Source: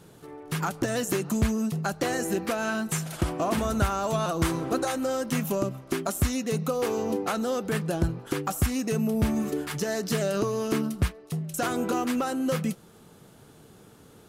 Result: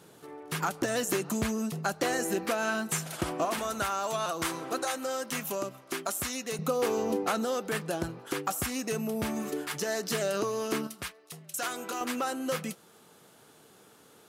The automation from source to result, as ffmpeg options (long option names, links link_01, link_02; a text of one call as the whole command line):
ffmpeg -i in.wav -af "asetnsamples=nb_out_samples=441:pad=0,asendcmd='3.45 highpass f 830;6.59 highpass f 210;7.45 highpass f 470;10.87 highpass f 1500;12.01 highpass f 580',highpass=frequency=310:poles=1" out.wav